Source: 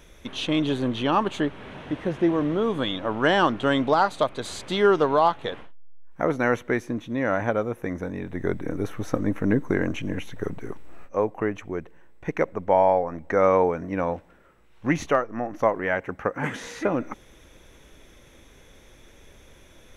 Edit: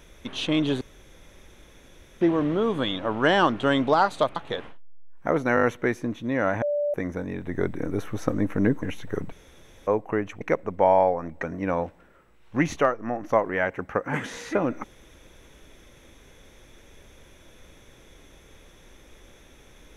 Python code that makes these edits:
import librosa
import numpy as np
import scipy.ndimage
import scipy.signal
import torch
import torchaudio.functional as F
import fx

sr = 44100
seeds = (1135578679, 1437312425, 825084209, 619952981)

y = fx.edit(x, sr, fx.room_tone_fill(start_s=0.81, length_s=1.4),
    fx.cut(start_s=4.36, length_s=0.94),
    fx.stutter(start_s=6.49, slice_s=0.02, count=5),
    fx.bleep(start_s=7.48, length_s=0.32, hz=585.0, db=-22.0),
    fx.cut(start_s=9.68, length_s=0.43),
    fx.room_tone_fill(start_s=10.61, length_s=0.55),
    fx.cut(start_s=11.7, length_s=0.6),
    fx.cut(start_s=13.32, length_s=0.41), tone=tone)